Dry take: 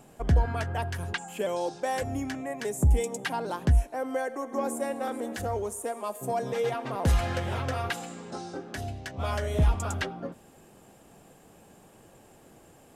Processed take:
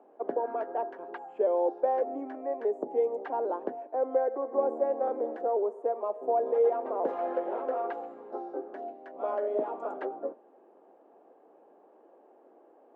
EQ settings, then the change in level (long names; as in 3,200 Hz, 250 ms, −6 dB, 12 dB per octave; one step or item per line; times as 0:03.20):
high-pass filter 320 Hz 24 dB per octave
dynamic equaliser 480 Hz, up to +5 dB, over −43 dBFS, Q 0.98
flat-topped band-pass 460 Hz, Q 0.64
0.0 dB